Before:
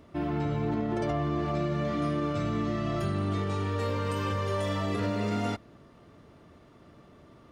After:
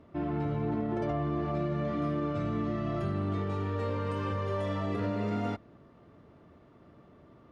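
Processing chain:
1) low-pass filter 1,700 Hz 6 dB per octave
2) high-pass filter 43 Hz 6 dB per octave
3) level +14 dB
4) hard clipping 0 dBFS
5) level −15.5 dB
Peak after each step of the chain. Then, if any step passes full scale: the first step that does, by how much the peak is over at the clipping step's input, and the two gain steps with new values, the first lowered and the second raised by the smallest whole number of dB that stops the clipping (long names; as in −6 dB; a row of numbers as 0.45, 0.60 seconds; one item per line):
−18.0, −18.5, −4.5, −4.5, −20.0 dBFS
no step passes full scale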